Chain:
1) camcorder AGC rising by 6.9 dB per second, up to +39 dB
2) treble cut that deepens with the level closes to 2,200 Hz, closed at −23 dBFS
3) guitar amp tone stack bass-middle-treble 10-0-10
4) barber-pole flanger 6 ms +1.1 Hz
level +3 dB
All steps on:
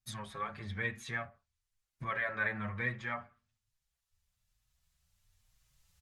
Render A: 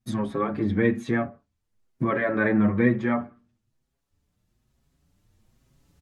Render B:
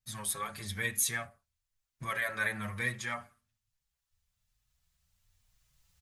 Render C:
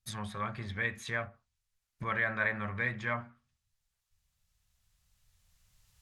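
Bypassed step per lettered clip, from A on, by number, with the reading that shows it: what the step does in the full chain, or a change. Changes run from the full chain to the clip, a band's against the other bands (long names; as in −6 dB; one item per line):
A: 3, 250 Hz band +12.5 dB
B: 2, 4 kHz band +8.0 dB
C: 4, change in integrated loudness +3.0 LU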